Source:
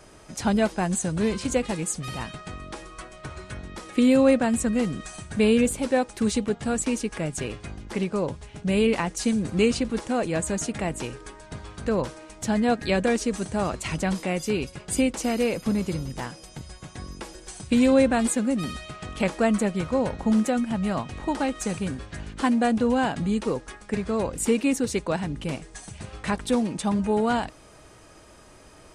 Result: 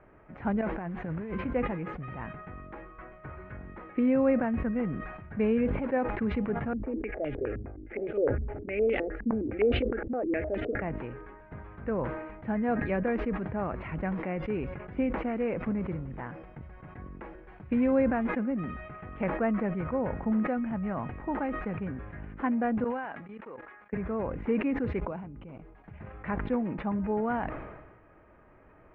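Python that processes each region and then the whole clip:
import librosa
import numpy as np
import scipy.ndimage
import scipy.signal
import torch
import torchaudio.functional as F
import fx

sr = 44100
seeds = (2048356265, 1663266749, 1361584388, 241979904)

y = fx.chain(x, sr, fx.steep_lowpass(hz=7200.0, slope=36),
    fx.over_compress(threshold_db=-29.0, ratio=-1.0),
    fx.quant_float(bits=2), at=(0.61, 1.41))
y = fx.chain(y, sr, fx.fixed_phaser(hz=420.0, stages=4),
    fx.filter_held_lowpass(hz=9.7, low_hz=210.0, high_hz=3400.0), at=(6.73, 10.82))
y = fx.chain(y, sr, fx.highpass(hz=1000.0, slope=6),
    fx.level_steps(step_db=18), at=(22.84, 23.93))
y = fx.chain(y, sr, fx.peak_eq(hz=1800.0, db=-11.5, octaves=0.35),
    fx.level_steps(step_db=19), at=(25.0, 25.84))
y = scipy.signal.sosfilt(scipy.signal.butter(6, 2200.0, 'lowpass', fs=sr, output='sos'), y)
y = fx.sustainer(y, sr, db_per_s=45.0)
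y = F.gain(torch.from_numpy(y), -6.5).numpy()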